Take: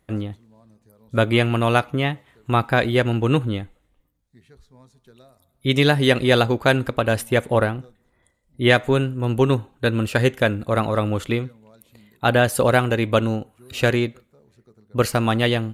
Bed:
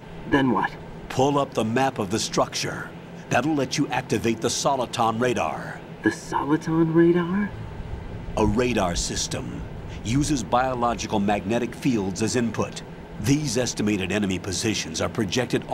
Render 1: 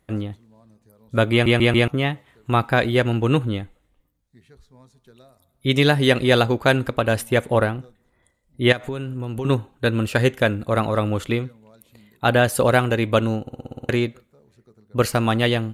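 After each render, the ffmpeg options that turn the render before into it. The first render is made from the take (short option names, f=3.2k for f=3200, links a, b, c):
-filter_complex "[0:a]asettb=1/sr,asplit=3[a][b][c];[a]atrim=end=8.724[d];[b]atrim=start=8.72:end=9.45,asetpts=PTS-STARTPTS,afade=t=in:d=0.004:c=qsin,afade=t=out:st=0.726:d=0.004:c=qsin,acompressor=threshold=-24dB:ratio=6:attack=3.2:release=140:knee=1:detection=peak[e];[c]atrim=start=9.446[f];[d][e]acrossfade=d=0.004:c1=hsin:c2=qsin[g];[g][f]acrossfade=d=0.004:c1=qsin:c2=hsin,asplit=13[h][i][j][k][l][m][n][o][p][q][r][s][t];[h]atrim=end=1.462[u];[i]atrim=start=1.318:end=1.462[v];[j]atrim=start=1.318:end=1.462[w];[k]atrim=start=1.318:end=1.462[x];[l]atrim=start=1.878:end=13.472[y];[m]atrim=start=13.408:end=13.472[z];[n]atrim=start=13.408:end=13.472[aa];[o]atrim=start=13.408:end=13.472[ab];[p]atrim=start=13.408:end=13.472[ac];[q]atrim=start=13.408:end=13.472[ad];[r]atrim=start=13.408:end=13.472[ae];[s]atrim=start=13.408:end=13.472[af];[t]atrim=start=13.888[ag];[u][v]acrossfade=d=0.004:c1=hsin:c2=hsin[ah];[ah][w]acrossfade=d=0.004:c1=hsin:c2=hsin[ai];[ai][x]acrossfade=d=0.004:c1=hsin:c2=hsin[aj];[aj][y]acrossfade=d=0.004:c1=hsin:c2=hsin[ak];[ak][z]acrossfade=d=0.004:c1=hsin:c2=hsin[al];[al][aa]acrossfade=d=0.004:c1=hsin:c2=hsin[am];[am][ab]acrossfade=d=0.004:c1=hsin:c2=hsin[an];[an][ac]acrossfade=d=0.004:c1=hsin:c2=hsin[ao];[ao][ad]acrossfade=d=0.004:c1=hsin:c2=hsin[ap];[ap][ae]acrossfade=d=0.004:c1=hsin:c2=hsin[aq];[aq][af]acrossfade=d=0.004:c1=hsin:c2=hsin[ar];[ar][ag]acrossfade=d=0.004:c1=hsin:c2=hsin"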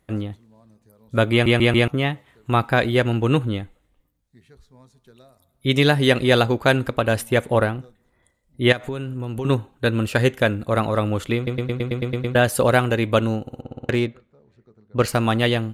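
-filter_complex "[0:a]asettb=1/sr,asplit=3[a][b][c];[a]atrim=end=13.614[d];[b]atrim=start=13.61:end=15.08,asetpts=PTS-STARTPTS,afade=t=in:d=0.004:c=qsin,afade=t=out:st=1.466:d=0.004:c=qsin,adynamicsmooth=sensitivity=3:basefreq=4.3k[e];[c]atrim=start=15.076[f];[d][e]acrossfade=d=0.004:c1=hsin:c2=qsin[g];[g][f]acrossfade=d=0.004:c1=qsin:c2=hsin,asplit=10[h][i][j][k][l][m][n][o][p][q];[h]atrim=end=11.472[r];[i]atrim=start=11.358:end=11.472[s];[j]atrim=start=11.358:end=11.472[t];[k]atrim=start=11.358:end=11.472[u];[l]atrim=start=11.358:end=11.472[v];[m]atrim=start=11.358:end=11.472[w];[n]atrim=start=11.358:end=11.472[x];[o]atrim=start=11.358:end=11.472[y];[p]atrim=start=11.358:end=11.472[z];[q]atrim=start=12.348[aa];[r][s]acrossfade=d=0.004:c1=hsin:c2=hsin[ab];[ab][t]acrossfade=d=0.004:c1=hsin:c2=hsin[ac];[ac][u]acrossfade=d=0.004:c1=hsin:c2=hsin[ad];[ad][v]acrossfade=d=0.004:c1=hsin:c2=hsin[ae];[ae][w]acrossfade=d=0.004:c1=hsin:c2=hsin[af];[af][x]acrossfade=d=0.004:c1=hsin:c2=hsin[ag];[ag][y]acrossfade=d=0.004:c1=hsin:c2=hsin[ah];[ah][z]acrossfade=d=0.004:c1=hsin:c2=hsin[ai];[ai][aa]acrossfade=d=0.004:c1=hsin:c2=hsin"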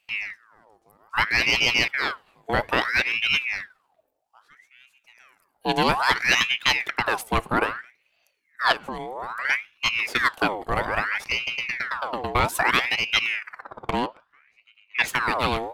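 -af "aeval=exprs='if(lt(val(0),0),0.708*val(0),val(0))':c=same,aeval=exprs='val(0)*sin(2*PI*1600*n/s+1600*0.65/0.61*sin(2*PI*0.61*n/s))':c=same"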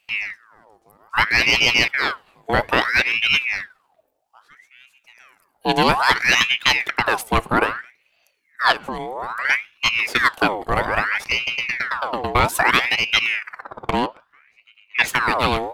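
-af "volume=4.5dB,alimiter=limit=-2dB:level=0:latency=1"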